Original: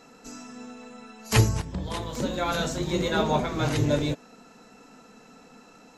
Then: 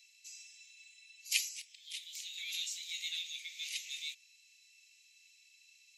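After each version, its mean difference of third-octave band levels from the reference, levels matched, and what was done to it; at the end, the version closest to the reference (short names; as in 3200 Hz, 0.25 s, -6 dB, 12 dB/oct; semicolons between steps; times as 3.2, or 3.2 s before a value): 21.5 dB: steep high-pass 2200 Hz 72 dB/oct; gain -3.5 dB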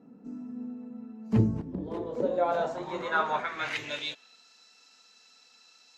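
9.5 dB: band-pass sweep 220 Hz -> 4500 Hz, 1.45–4.46; gain +6 dB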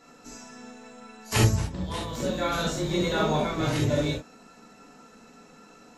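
2.5 dB: non-linear reverb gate 90 ms flat, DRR -3.5 dB; gain -5 dB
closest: third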